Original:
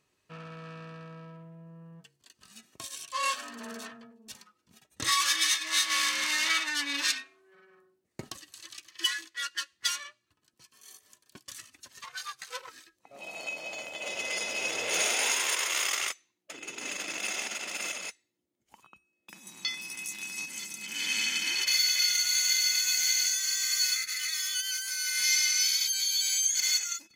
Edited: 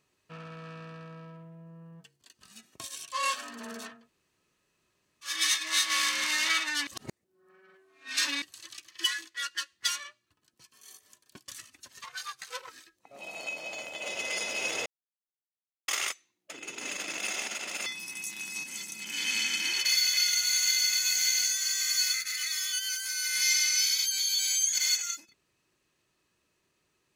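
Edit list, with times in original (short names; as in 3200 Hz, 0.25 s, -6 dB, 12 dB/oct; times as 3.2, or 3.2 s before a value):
3.98–5.33 room tone, crossfade 0.24 s
6.87–8.42 reverse
14.86–15.88 mute
17.86–19.68 cut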